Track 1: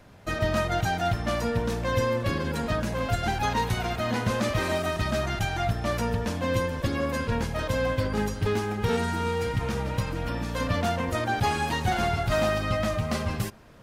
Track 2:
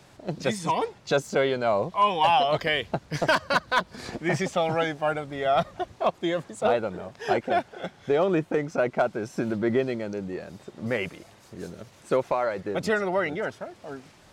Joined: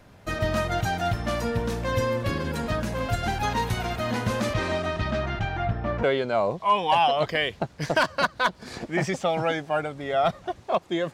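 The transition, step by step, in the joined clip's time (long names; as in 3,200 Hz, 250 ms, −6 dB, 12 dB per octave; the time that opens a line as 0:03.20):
track 1
0:04.53–0:06.03: low-pass filter 6,800 Hz → 1,600 Hz
0:06.03: continue with track 2 from 0:01.35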